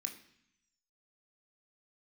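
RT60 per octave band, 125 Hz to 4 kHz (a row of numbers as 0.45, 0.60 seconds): 1.0, 0.95, 0.60, 0.75, 0.90, 1.1 seconds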